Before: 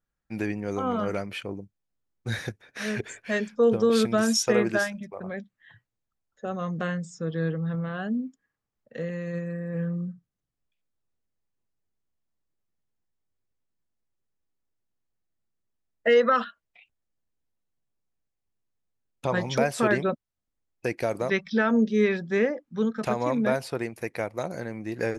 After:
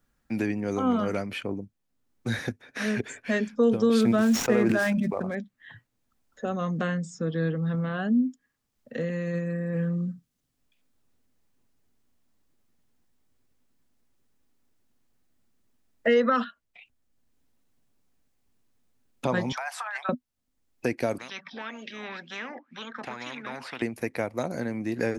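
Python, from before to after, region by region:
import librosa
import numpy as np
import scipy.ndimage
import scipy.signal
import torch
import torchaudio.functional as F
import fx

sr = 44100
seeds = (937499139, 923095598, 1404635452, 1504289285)

y = fx.chain(x, sr, fx.median_filter(points=9),
    fx.sustainer(db_per_s=22.0), at=(4.01, 5.35))
y = fx.chain(y, sr, fx.cheby1_highpass(hz=770.0, order=5),
    fx.high_shelf(hz=2700.0, db=-8.5),
    fx.over_compress(threshold_db=-35.0, ratio=-1.0), at=(19.52, 20.09))
y = fx.chain(y, sr, fx.peak_eq(hz=1200.0, db=-4.0, octaves=0.7),
    fx.wah_lfo(hz=2.0, low_hz=770.0, high_hz=3000.0, q=11.0),
    fx.spectral_comp(ratio=4.0), at=(21.18, 23.82))
y = fx.peak_eq(y, sr, hz=250.0, db=9.5, octaves=0.3)
y = fx.band_squash(y, sr, depth_pct=40)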